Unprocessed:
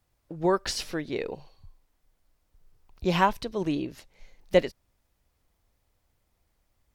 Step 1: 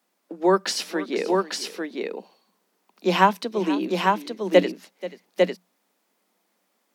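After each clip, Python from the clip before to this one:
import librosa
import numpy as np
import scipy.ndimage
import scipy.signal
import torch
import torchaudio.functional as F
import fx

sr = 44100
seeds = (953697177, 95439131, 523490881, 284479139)

y = scipy.signal.sosfilt(scipy.signal.cheby1(10, 1.0, 180.0, 'highpass', fs=sr, output='sos'), x)
y = fx.echo_multitap(y, sr, ms=(483, 850), db=(-16.5, -3.5))
y = y * 10.0 ** (5.5 / 20.0)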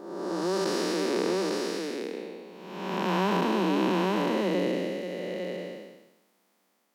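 y = fx.spec_blur(x, sr, span_ms=593.0)
y = fx.low_shelf(y, sr, hz=320.0, db=2.5)
y = y * 10.0 ** (2.5 / 20.0)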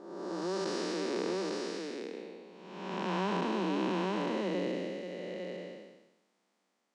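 y = scipy.signal.sosfilt(scipy.signal.butter(4, 8300.0, 'lowpass', fs=sr, output='sos'), x)
y = y * 10.0 ** (-6.5 / 20.0)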